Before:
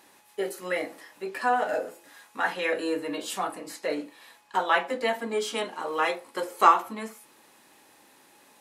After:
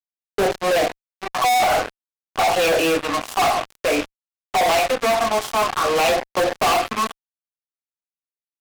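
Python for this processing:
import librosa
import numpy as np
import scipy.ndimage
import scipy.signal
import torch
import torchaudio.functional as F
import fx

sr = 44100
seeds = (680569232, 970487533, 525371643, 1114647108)

y = fx.vowel_filter(x, sr, vowel='a')
y = fx.phaser_stages(y, sr, stages=4, low_hz=390.0, high_hz=1900.0, hz=0.51, feedback_pct=30)
y = fx.fuzz(y, sr, gain_db=59.0, gate_db=-57.0)
y = y * librosa.db_to_amplitude(-2.5)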